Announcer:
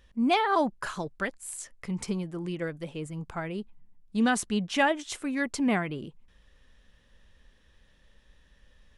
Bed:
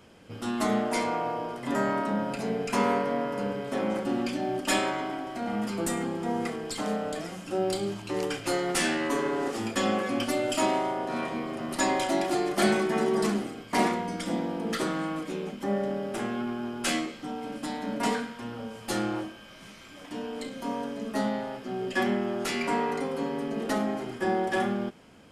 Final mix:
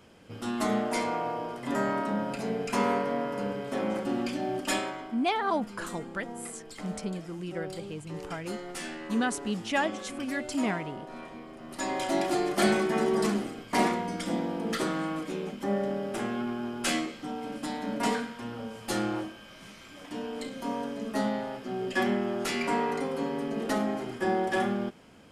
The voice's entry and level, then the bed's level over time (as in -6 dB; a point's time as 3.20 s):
4.95 s, -3.5 dB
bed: 4.63 s -1.5 dB
5.17 s -11.5 dB
11.60 s -11.5 dB
12.17 s -0.5 dB